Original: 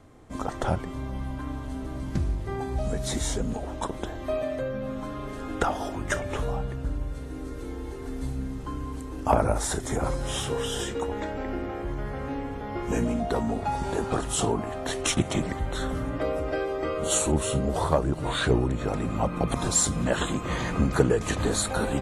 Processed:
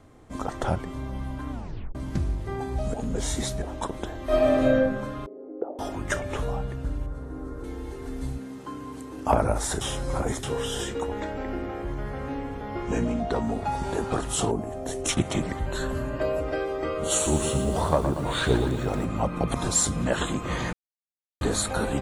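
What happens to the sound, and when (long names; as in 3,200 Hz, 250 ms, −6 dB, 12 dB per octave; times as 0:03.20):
0:01.52: tape stop 0.43 s
0:02.94–0:03.62: reverse
0:04.24–0:04.76: thrown reverb, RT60 1.1 s, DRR −9.5 dB
0:05.26–0:05.79: flat-topped band-pass 420 Hz, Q 1.7
0:07.06–0:07.64: high shelf with overshoot 1,800 Hz −10 dB, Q 1.5
0:08.37–0:09.26: high-pass filter 270 Hz → 110 Hz
0:09.81–0:10.43: reverse
0:12.83–0:13.43: low-pass filter 6,900 Hz
0:14.51–0:15.09: flat-topped bell 2,100 Hz −10 dB 2.6 octaves
0:15.66–0:16.41: EQ curve with evenly spaced ripples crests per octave 1.4, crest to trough 9 dB
0:17.08–0:19.05: feedback echo at a low word length 117 ms, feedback 55%, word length 8 bits, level −8 dB
0:20.73–0:21.41: silence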